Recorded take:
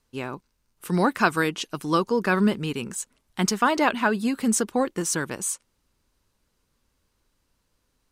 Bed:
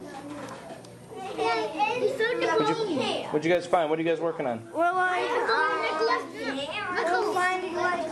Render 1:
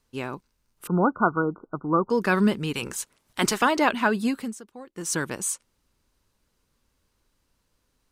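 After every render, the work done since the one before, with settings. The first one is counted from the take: 0.87–2.10 s: brick-wall FIR low-pass 1.5 kHz; 2.74–3.64 s: spectral peaks clipped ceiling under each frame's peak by 15 dB; 4.30–5.16 s: dip -19 dB, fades 0.24 s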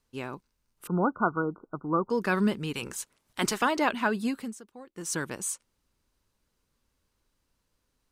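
trim -4.5 dB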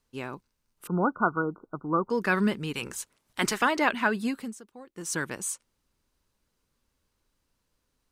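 dynamic bell 1.9 kHz, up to +5 dB, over -42 dBFS, Q 1.6; hum notches 50/100 Hz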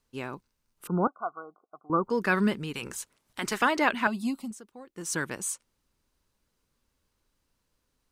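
1.07–1.90 s: vowel filter a; 2.59–3.52 s: compression 2:1, threshold -32 dBFS; 4.07–4.51 s: static phaser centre 450 Hz, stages 6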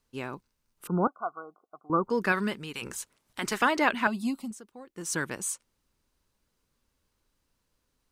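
2.32–2.82 s: bass shelf 490 Hz -7 dB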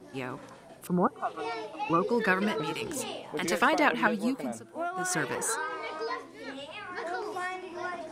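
add bed -9.5 dB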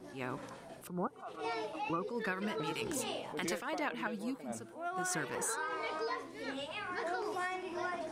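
compression 6:1, threshold -33 dBFS, peak gain reduction 14 dB; attacks held to a fixed rise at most 120 dB/s

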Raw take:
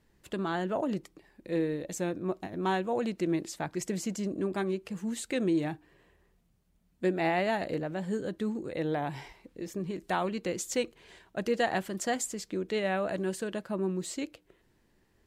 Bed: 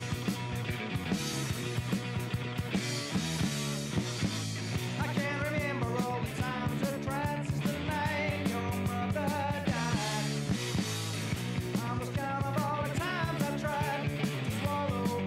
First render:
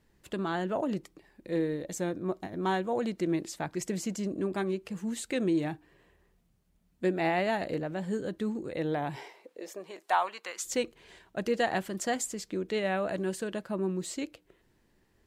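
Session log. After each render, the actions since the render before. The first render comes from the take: 1.47–3.26 s: band-stop 2.6 kHz, Q 11; 9.15–10.63 s: resonant high-pass 390 Hz -> 1.2 kHz, resonance Q 2.1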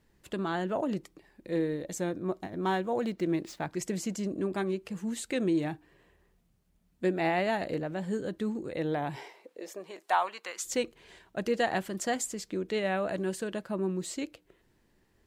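2.44–3.70 s: median filter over 5 samples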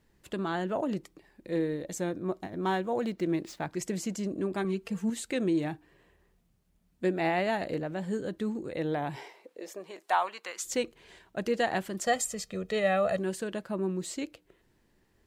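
4.64–5.10 s: comb 4.4 ms, depth 70%; 12.06–13.19 s: comb 1.6 ms, depth 96%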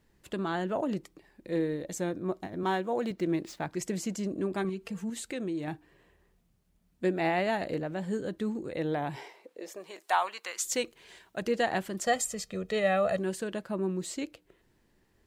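2.63–3.11 s: high-pass 170 Hz; 4.69–5.68 s: compression 2:1, threshold -35 dBFS; 9.76–11.42 s: tilt EQ +1.5 dB/octave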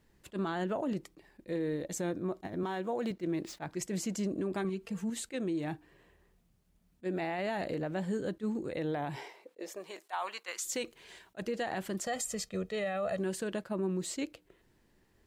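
peak limiter -26 dBFS, peak gain reduction 11 dB; attacks held to a fixed rise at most 580 dB/s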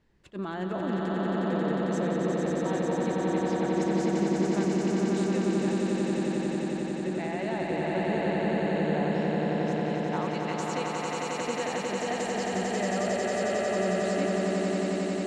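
distance through air 90 m; echo with a slow build-up 90 ms, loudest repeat 8, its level -3.5 dB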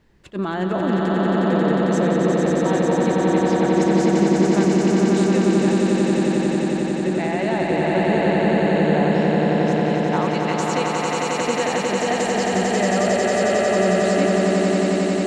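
trim +9.5 dB

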